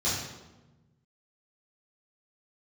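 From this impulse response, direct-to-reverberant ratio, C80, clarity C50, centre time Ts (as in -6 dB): -11.0 dB, 4.0 dB, 1.0 dB, 68 ms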